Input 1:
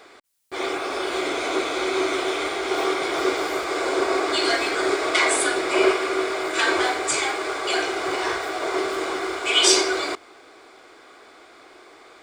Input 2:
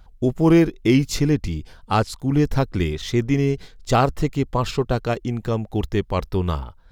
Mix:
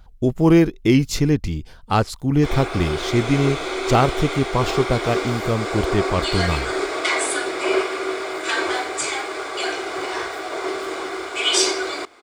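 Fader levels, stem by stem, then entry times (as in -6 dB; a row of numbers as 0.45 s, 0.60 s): -1.5 dB, +1.0 dB; 1.90 s, 0.00 s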